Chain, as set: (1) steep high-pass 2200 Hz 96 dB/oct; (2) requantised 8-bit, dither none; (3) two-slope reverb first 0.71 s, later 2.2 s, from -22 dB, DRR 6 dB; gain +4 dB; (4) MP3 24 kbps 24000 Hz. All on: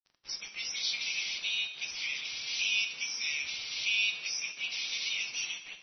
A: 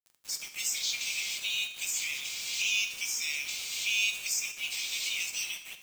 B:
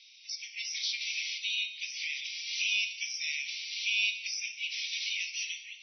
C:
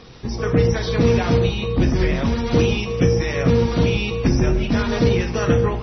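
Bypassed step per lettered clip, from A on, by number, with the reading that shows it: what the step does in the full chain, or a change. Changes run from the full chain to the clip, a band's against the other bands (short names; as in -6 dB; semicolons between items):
4, momentary loudness spread change -1 LU; 2, distortion -14 dB; 1, 500 Hz band +38.5 dB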